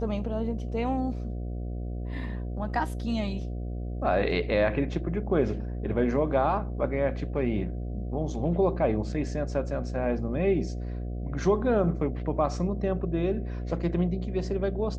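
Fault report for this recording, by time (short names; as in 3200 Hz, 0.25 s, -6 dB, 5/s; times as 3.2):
buzz 60 Hz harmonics 12 -33 dBFS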